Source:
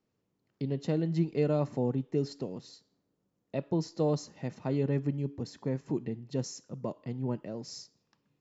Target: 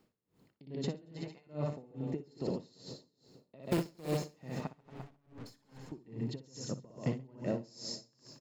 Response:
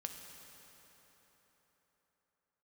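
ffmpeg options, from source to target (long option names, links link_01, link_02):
-filter_complex "[0:a]acompressor=threshold=-39dB:ratio=16,asettb=1/sr,asplit=3[link_01][link_02][link_03];[link_01]atrim=end=1.054[link_04];[link_02]atrim=start=1.05:end=1.47,asetpts=PTS-STARTPTS,afade=type=in:duration=0.004:curve=qsin,afade=type=out:start_time=0.416:duration=0.004:curve=qsin,lowshelf=frequency=570:width_type=q:width=3:gain=-13.5[link_05];[link_03]atrim=start=1.466[link_06];[link_04][link_05]acrossfade=duration=0.004:curve1=hsin:curve2=qsin[link_07];[link_07][link_06]acrossfade=duration=0.004:curve1=qsin:curve2=hsin,asettb=1/sr,asplit=3[link_08][link_09][link_10];[link_08]atrim=end=3.634[link_11];[link_09]atrim=start=3.63:end=4.11,asetpts=PTS-STARTPTS,afade=type=in:duration=0.004:curve=qsin,afade=type=out:start_time=0.476:duration=0.004:curve=qsin,acrusher=bits=2:mode=log:mix=0:aa=0.000001[link_12];[link_10]atrim=start=4.106[link_13];[link_11][link_12]acrossfade=duration=0.004:curve1=hsin:curve2=qsin[link_14];[link_14][link_13]acrossfade=duration=0.004:curve1=qsin:curve2=hsin,bandreject=frequency=5900:width=8.7,asplit=2[link_15][link_16];[link_16]aecho=0:1:468|936|1404|1872:0.0891|0.0472|0.025|0.0133[link_17];[link_15][link_17]amix=inputs=2:normalize=0,asettb=1/sr,asplit=3[link_18][link_19][link_20];[link_18]atrim=end=4.674[link_21];[link_19]atrim=start=4.67:end=5.92,asetpts=PTS-STARTPTS,afade=type=in:duration=0.004:curve=qsin,afade=type=out:start_time=1.246:duration=0.004:curve=qsin,aeval=exprs='(tanh(794*val(0)+0.35)-tanh(0.35))/794':channel_layout=same[link_22];[link_20]atrim=start=5.916[link_23];[link_21][link_22]acrossfade=duration=0.004:curve1=hsin:curve2=qsin[link_24];[link_24][link_23]acrossfade=duration=0.004:curve1=qsin:curve2=hsin,asplit=2[link_25][link_26];[link_26]aecho=0:1:60|135|228.8|345.9|492.4:0.631|0.398|0.251|0.158|0.1[link_27];[link_25][link_27]amix=inputs=2:normalize=0,aeval=exprs='val(0)*pow(10,-27*(0.5-0.5*cos(2*PI*2.4*n/s))/20)':channel_layout=same,volume=11.5dB"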